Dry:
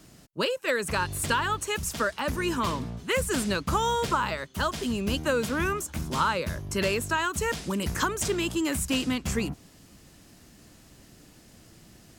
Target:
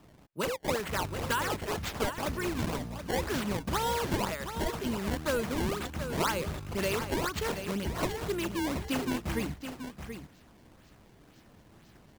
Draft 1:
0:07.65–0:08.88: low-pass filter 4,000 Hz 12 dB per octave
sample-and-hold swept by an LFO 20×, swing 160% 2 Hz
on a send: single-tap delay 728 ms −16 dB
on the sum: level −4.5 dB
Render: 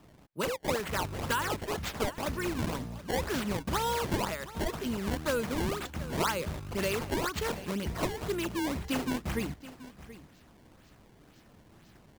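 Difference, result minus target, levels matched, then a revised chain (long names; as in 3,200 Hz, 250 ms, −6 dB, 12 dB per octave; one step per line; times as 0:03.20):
echo-to-direct −7 dB
0:07.65–0:08.88: low-pass filter 4,000 Hz 12 dB per octave
sample-and-hold swept by an LFO 20×, swing 160% 2 Hz
on a send: single-tap delay 728 ms −9 dB
on the sum: level −4.5 dB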